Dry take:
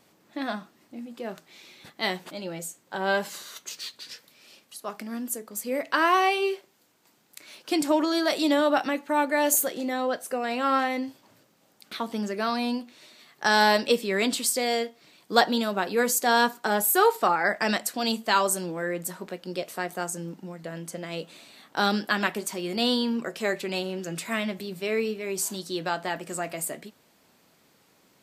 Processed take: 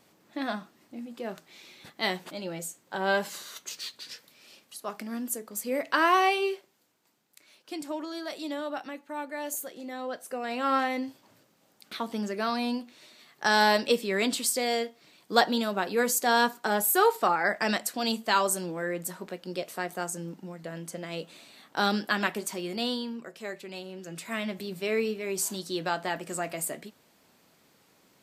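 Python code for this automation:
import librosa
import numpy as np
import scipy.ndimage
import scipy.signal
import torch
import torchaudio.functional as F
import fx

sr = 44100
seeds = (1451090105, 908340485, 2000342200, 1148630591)

y = fx.gain(x, sr, db=fx.line((6.3, -1.0), (7.56, -12.0), (9.63, -12.0), (10.73, -2.0), (22.58, -2.0), (23.19, -10.5), (23.81, -10.5), (24.66, -1.0)))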